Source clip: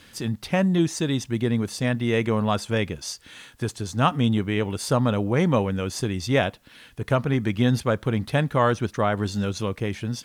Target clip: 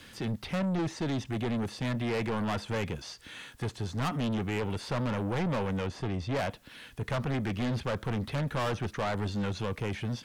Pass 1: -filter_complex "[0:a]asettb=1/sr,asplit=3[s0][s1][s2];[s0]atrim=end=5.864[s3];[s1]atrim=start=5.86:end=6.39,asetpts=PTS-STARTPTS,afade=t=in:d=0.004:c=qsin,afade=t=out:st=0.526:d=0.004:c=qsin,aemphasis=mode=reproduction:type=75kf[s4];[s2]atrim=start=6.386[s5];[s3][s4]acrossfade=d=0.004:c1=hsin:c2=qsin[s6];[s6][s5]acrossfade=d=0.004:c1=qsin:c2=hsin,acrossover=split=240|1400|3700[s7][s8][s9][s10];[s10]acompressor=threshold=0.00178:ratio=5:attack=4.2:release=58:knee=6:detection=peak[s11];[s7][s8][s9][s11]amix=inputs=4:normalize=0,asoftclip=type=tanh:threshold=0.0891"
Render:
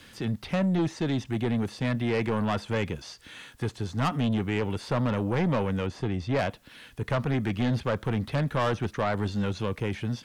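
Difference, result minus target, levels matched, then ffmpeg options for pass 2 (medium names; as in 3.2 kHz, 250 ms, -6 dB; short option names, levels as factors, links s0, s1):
saturation: distortion -4 dB
-filter_complex "[0:a]asettb=1/sr,asplit=3[s0][s1][s2];[s0]atrim=end=5.864[s3];[s1]atrim=start=5.86:end=6.39,asetpts=PTS-STARTPTS,afade=t=in:d=0.004:c=qsin,afade=t=out:st=0.526:d=0.004:c=qsin,aemphasis=mode=reproduction:type=75kf[s4];[s2]atrim=start=6.386[s5];[s3][s4]acrossfade=d=0.004:c1=hsin:c2=qsin[s6];[s6][s5]acrossfade=d=0.004:c1=qsin:c2=hsin,acrossover=split=240|1400|3700[s7][s8][s9][s10];[s10]acompressor=threshold=0.00178:ratio=5:attack=4.2:release=58:knee=6:detection=peak[s11];[s7][s8][s9][s11]amix=inputs=4:normalize=0,asoftclip=type=tanh:threshold=0.0422"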